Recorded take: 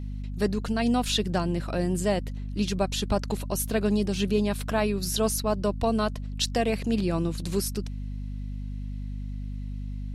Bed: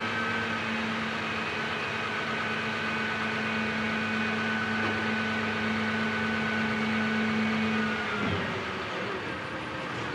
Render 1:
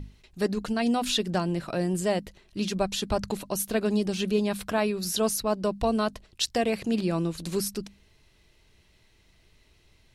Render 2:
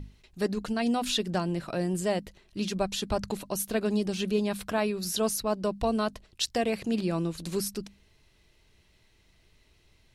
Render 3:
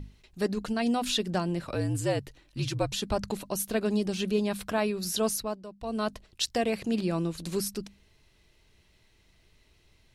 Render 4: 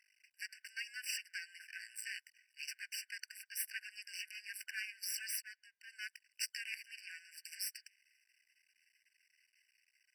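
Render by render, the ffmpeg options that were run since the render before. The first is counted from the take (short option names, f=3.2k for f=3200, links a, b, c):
-af "bandreject=f=50:t=h:w=6,bandreject=f=100:t=h:w=6,bandreject=f=150:t=h:w=6,bandreject=f=200:t=h:w=6,bandreject=f=250:t=h:w=6"
-af "volume=-2dB"
-filter_complex "[0:a]asettb=1/sr,asplit=3[a][b][c];[a]atrim=end=1.654[d];[b]atrim=start=1.65:end=2.92,asetpts=PTS-STARTPTS,afade=t=in:d=0.004:c=qsin,afade=t=out:st=1.266:d=0.004:c=qsin,afreqshift=-64[e];[c]atrim=start=2.916[f];[d][e]acrossfade=d=0.004:c1=hsin:c2=qsin[g];[g][f]acrossfade=d=0.004:c1=qsin:c2=hsin,asplit=3[h][i][j];[h]atrim=end=5.63,asetpts=PTS-STARTPTS,afade=t=out:st=5.35:d=0.28:silence=0.188365[k];[i]atrim=start=5.63:end=5.8,asetpts=PTS-STARTPTS,volume=-14.5dB[l];[j]atrim=start=5.8,asetpts=PTS-STARTPTS,afade=t=in:d=0.28:silence=0.188365[m];[k][l][m]concat=n=3:v=0:a=1"
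-af "aeval=exprs='max(val(0),0)':c=same,afftfilt=real='re*eq(mod(floor(b*sr/1024/1500),2),1)':imag='im*eq(mod(floor(b*sr/1024/1500),2),1)':win_size=1024:overlap=0.75"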